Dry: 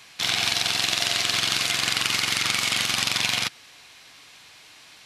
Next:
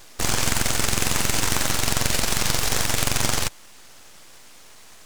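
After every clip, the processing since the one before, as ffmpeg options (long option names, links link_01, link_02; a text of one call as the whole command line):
ffmpeg -i in.wav -af "aeval=exprs='abs(val(0))':channel_layout=same,volume=4dB" out.wav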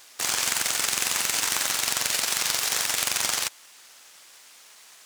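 ffmpeg -i in.wav -af "highpass=frequency=1300:poles=1" out.wav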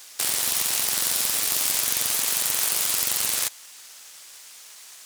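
ffmpeg -i in.wav -af "afftfilt=real='re*lt(hypot(re,im),0.0631)':imag='im*lt(hypot(re,im),0.0631)':win_size=1024:overlap=0.75,highshelf=frequency=3700:gain=8" out.wav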